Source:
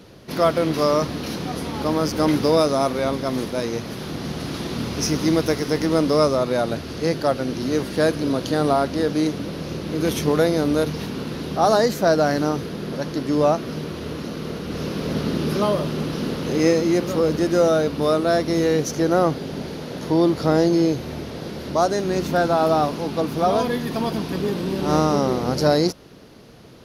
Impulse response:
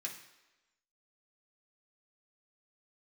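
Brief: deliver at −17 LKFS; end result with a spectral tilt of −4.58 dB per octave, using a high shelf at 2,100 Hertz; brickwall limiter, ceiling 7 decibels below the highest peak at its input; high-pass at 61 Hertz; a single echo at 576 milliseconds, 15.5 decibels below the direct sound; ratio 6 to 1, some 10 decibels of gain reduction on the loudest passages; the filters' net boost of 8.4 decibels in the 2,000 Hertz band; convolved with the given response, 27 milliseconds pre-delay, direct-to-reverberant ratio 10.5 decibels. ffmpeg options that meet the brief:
-filter_complex "[0:a]highpass=61,equalizer=frequency=2000:width_type=o:gain=9,highshelf=frequency=2100:gain=3.5,acompressor=threshold=-22dB:ratio=6,alimiter=limit=-17.5dB:level=0:latency=1,aecho=1:1:576:0.168,asplit=2[link_01][link_02];[1:a]atrim=start_sample=2205,adelay=27[link_03];[link_02][link_03]afir=irnorm=-1:irlink=0,volume=-9.5dB[link_04];[link_01][link_04]amix=inputs=2:normalize=0,volume=11dB"

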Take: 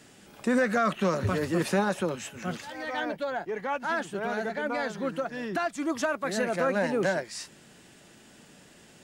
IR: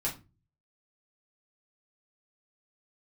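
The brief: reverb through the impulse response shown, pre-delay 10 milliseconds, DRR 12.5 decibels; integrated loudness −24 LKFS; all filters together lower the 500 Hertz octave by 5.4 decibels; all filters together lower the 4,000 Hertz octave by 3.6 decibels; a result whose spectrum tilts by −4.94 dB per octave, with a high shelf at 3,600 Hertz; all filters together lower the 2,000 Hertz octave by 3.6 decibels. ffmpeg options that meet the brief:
-filter_complex "[0:a]equalizer=frequency=500:width_type=o:gain=-6.5,equalizer=frequency=2000:width_type=o:gain=-4.5,highshelf=frequency=3600:gain=6.5,equalizer=frequency=4000:width_type=o:gain=-8,asplit=2[link_01][link_02];[1:a]atrim=start_sample=2205,adelay=10[link_03];[link_02][link_03]afir=irnorm=-1:irlink=0,volume=-17dB[link_04];[link_01][link_04]amix=inputs=2:normalize=0,volume=8dB"

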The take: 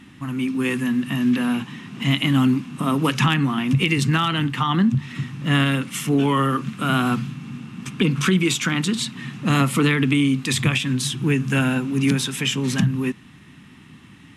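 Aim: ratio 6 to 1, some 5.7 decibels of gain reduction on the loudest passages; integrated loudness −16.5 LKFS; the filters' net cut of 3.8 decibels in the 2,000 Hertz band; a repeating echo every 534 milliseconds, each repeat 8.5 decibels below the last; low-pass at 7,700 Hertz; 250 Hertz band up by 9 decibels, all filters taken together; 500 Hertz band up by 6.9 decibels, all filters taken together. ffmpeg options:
ffmpeg -i in.wav -af "lowpass=7700,equalizer=frequency=250:width_type=o:gain=9,equalizer=frequency=500:width_type=o:gain=5.5,equalizer=frequency=2000:width_type=o:gain=-5.5,acompressor=threshold=-12dB:ratio=6,aecho=1:1:534|1068|1602|2136:0.376|0.143|0.0543|0.0206,volume=1dB" out.wav

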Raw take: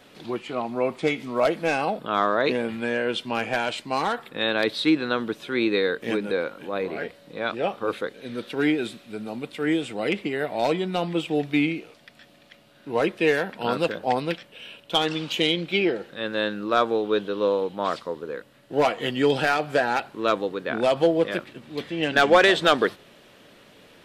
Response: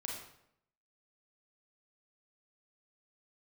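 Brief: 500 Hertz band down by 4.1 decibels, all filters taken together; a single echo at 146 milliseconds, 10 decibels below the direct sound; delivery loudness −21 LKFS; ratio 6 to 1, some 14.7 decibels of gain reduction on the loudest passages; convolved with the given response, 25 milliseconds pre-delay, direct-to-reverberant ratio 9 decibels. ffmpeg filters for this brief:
-filter_complex "[0:a]equalizer=frequency=500:width_type=o:gain=-5,acompressor=threshold=-31dB:ratio=6,aecho=1:1:146:0.316,asplit=2[link_01][link_02];[1:a]atrim=start_sample=2205,adelay=25[link_03];[link_02][link_03]afir=irnorm=-1:irlink=0,volume=-9dB[link_04];[link_01][link_04]amix=inputs=2:normalize=0,volume=13.5dB"

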